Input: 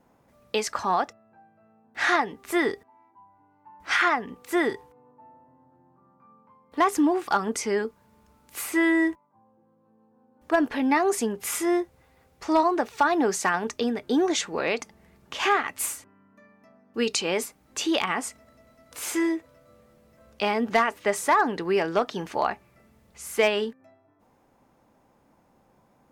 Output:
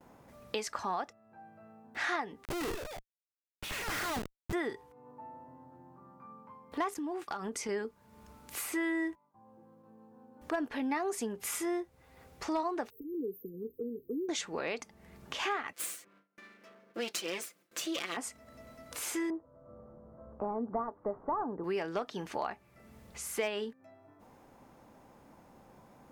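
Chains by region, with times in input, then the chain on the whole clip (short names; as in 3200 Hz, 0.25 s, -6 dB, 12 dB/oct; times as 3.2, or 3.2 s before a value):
2.45–4.53 HPF 40 Hz + Schmitt trigger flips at -31 dBFS + echoes that change speed 0.186 s, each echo +5 st, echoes 2, each echo -6 dB
6.94–7.69 expander -33 dBFS + compressor 4:1, threshold -28 dBFS
12.9–14.29 brick-wall FIR band-stop 500–13000 Hz + tilt shelf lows -10 dB, about 700 Hz
15.73–18.17 minimum comb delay 5.8 ms + HPF 310 Hz + bell 860 Hz -11 dB 0.54 oct
19.3–21.64 CVSD 32 kbps + steep low-pass 1200 Hz
whole clip: gate with hold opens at -56 dBFS; compressor 2:1, threshold -49 dBFS; gain +4.5 dB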